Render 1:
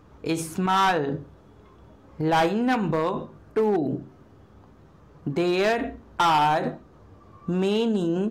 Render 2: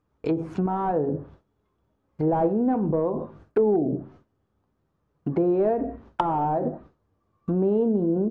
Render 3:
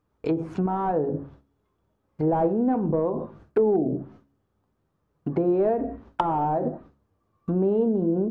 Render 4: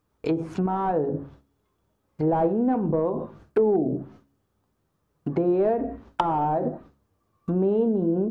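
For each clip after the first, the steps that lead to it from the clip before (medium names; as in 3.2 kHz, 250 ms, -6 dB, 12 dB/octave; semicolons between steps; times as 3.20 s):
gate with hold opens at -38 dBFS; low-pass that closes with the level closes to 520 Hz, closed at -22 dBFS; dynamic bell 640 Hz, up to +5 dB, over -39 dBFS, Q 0.77
de-hum 69.3 Hz, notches 5
treble shelf 3 kHz +7.5 dB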